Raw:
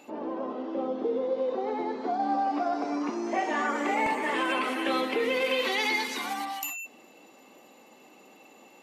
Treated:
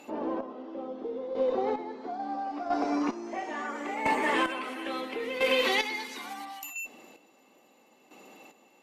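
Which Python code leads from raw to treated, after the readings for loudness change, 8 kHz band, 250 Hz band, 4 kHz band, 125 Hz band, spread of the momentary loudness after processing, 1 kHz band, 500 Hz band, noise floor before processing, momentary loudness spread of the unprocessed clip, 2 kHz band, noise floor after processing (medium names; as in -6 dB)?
-2.0 dB, -3.5 dB, -2.5 dB, -1.0 dB, no reading, 12 LU, -3.0 dB, -1.5 dB, -55 dBFS, 8 LU, -2.0 dB, -62 dBFS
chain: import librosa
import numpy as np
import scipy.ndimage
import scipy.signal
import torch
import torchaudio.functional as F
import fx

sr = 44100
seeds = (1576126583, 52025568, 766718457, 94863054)

y = fx.chopper(x, sr, hz=0.74, depth_pct=65, duty_pct=30)
y = fx.cheby_harmonics(y, sr, harmonics=(6,), levels_db=(-35,), full_scale_db=-16.0)
y = F.gain(torch.from_numpy(y), 2.0).numpy()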